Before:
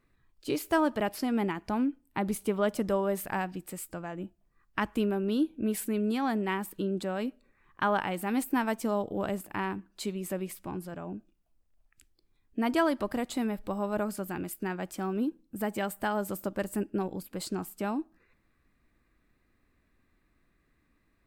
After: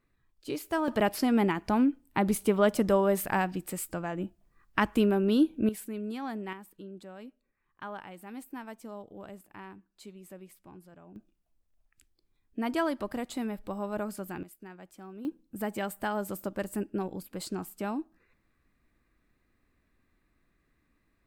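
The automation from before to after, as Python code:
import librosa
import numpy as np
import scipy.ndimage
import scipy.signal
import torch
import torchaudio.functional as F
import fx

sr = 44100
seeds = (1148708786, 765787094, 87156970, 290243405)

y = fx.gain(x, sr, db=fx.steps((0.0, -4.0), (0.88, 4.0), (5.69, -7.0), (6.53, -13.5), (11.16, -3.0), (14.43, -13.5), (15.25, -1.5)))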